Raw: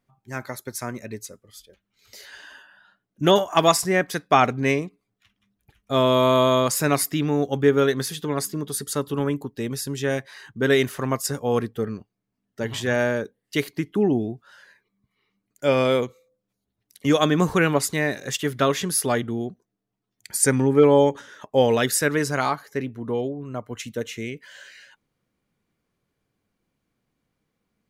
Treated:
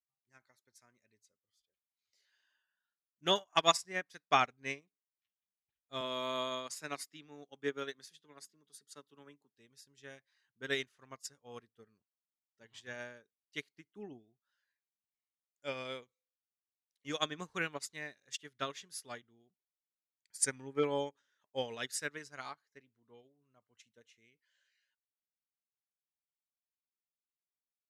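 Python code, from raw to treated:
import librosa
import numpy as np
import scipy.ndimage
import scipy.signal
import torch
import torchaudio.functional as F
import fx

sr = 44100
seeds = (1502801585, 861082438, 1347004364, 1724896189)

y = fx.highpass(x, sr, hz=150.0, slope=24, at=(6.01, 9.51))
y = scipy.signal.sosfilt(scipy.signal.butter(2, 7100.0, 'lowpass', fs=sr, output='sos'), y)
y = fx.tilt_shelf(y, sr, db=-6.5, hz=1200.0)
y = fx.upward_expand(y, sr, threshold_db=-33.0, expansion=2.5)
y = y * librosa.db_to_amplitude(-7.0)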